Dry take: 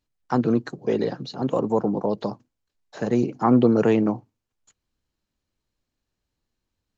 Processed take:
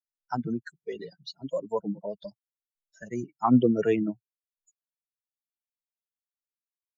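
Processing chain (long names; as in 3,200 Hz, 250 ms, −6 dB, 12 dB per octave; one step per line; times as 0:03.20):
spectral dynamics exaggerated over time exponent 3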